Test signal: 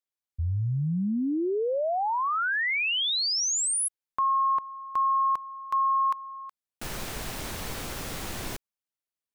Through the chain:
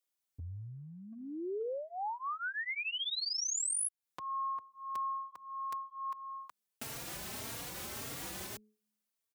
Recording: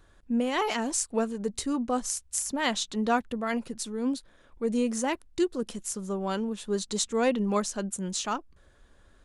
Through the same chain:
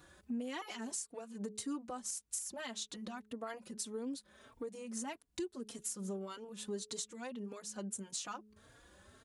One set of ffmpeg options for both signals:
-filter_complex "[0:a]bandreject=f=212.1:t=h:w=4,bandreject=f=424.2:t=h:w=4,acompressor=threshold=0.0126:ratio=16:attack=1.2:release=485:knee=6:detection=peak,highpass=82,highshelf=f=5500:g=6,asplit=2[s0][s1];[s1]adelay=3.7,afreqshift=1.7[s2];[s0][s2]amix=inputs=2:normalize=1,volume=1.68"

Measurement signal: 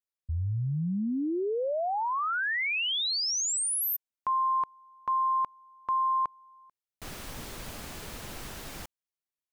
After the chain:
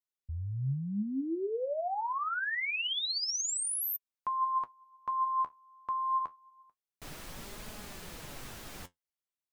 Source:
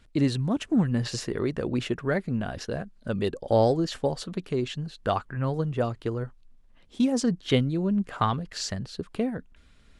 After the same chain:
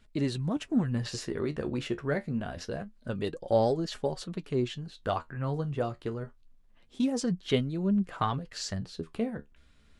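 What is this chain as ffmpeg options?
-af "flanger=delay=4.7:depth=9.5:regen=55:speed=0.26:shape=sinusoidal"

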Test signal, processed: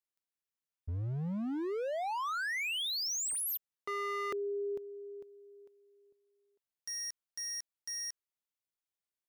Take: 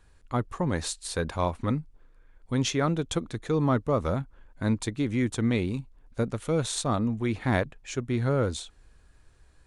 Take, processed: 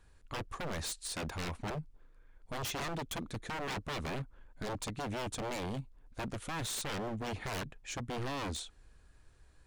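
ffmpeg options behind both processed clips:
-af "aeval=exprs='0.0355*(abs(mod(val(0)/0.0355+3,4)-2)-1)':c=same,volume=0.668"

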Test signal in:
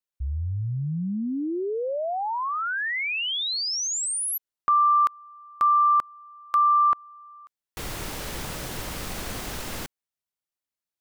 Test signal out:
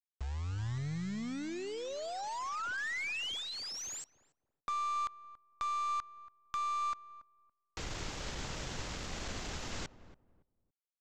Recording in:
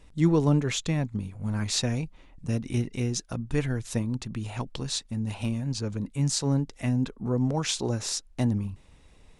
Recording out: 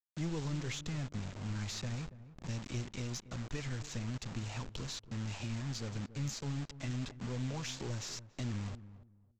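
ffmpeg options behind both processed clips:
-filter_complex "[0:a]acrossover=split=120|2100[s0][s1][s2];[s0]acompressor=threshold=0.0224:ratio=8[s3];[s1]acompressor=threshold=0.00891:ratio=2[s4];[s2]acompressor=threshold=0.0141:ratio=8[s5];[s3][s4][s5]amix=inputs=3:normalize=0,aresample=16000,acrusher=bits=6:mix=0:aa=0.000001,aresample=44100,aeval=exprs='(tanh(20*val(0)+0.3)-tanh(0.3))/20':c=same,asplit=2[s6][s7];[s7]adelay=282,lowpass=f=870:p=1,volume=0.2,asplit=2[s8][s9];[s9]adelay=282,lowpass=f=870:p=1,volume=0.25,asplit=2[s10][s11];[s11]adelay=282,lowpass=f=870:p=1,volume=0.25[s12];[s6][s8][s10][s12]amix=inputs=4:normalize=0,volume=0.668"

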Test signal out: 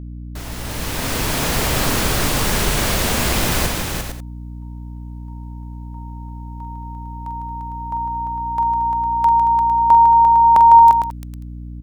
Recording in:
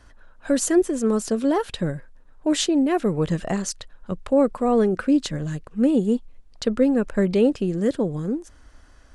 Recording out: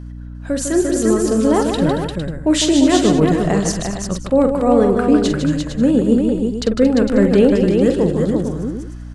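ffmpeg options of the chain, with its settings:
-af "aecho=1:1:45|153|227|347|455|540:0.355|0.422|0.211|0.562|0.335|0.112,dynaudnorm=f=290:g=7:m=5.62,aeval=exprs='val(0)+0.0355*(sin(2*PI*60*n/s)+sin(2*PI*2*60*n/s)/2+sin(2*PI*3*60*n/s)/3+sin(2*PI*4*60*n/s)/4+sin(2*PI*5*60*n/s)/5)':c=same,volume=0.891"

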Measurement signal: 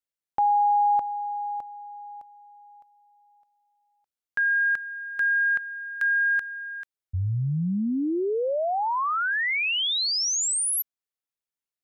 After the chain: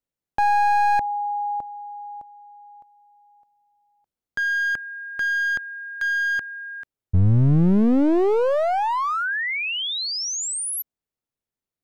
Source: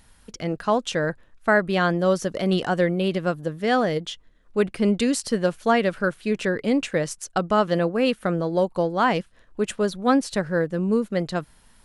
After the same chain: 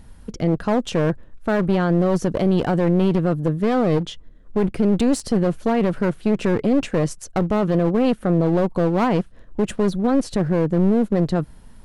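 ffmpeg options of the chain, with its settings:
-af "tiltshelf=f=730:g=7.5,alimiter=limit=0.188:level=0:latency=1:release=14,aeval=exprs='clip(val(0),-1,0.0447)':c=same,volume=1.88"

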